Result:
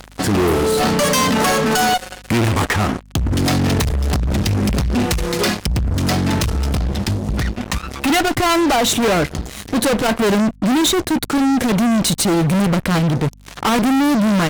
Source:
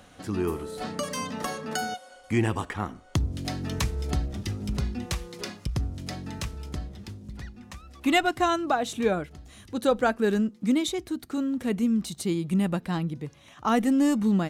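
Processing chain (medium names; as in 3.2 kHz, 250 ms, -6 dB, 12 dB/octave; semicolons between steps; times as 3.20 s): rattle on loud lows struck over -24 dBFS, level -31 dBFS; fuzz box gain 40 dB, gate -47 dBFS; hum 50 Hz, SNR 28 dB; transformer saturation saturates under 97 Hz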